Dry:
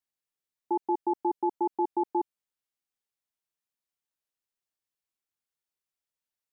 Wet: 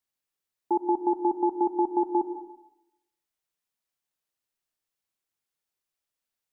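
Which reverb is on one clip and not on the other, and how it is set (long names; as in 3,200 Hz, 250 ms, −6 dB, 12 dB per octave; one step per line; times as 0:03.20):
comb and all-pass reverb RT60 0.87 s, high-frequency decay 0.55×, pre-delay 55 ms, DRR 8.5 dB
level +3 dB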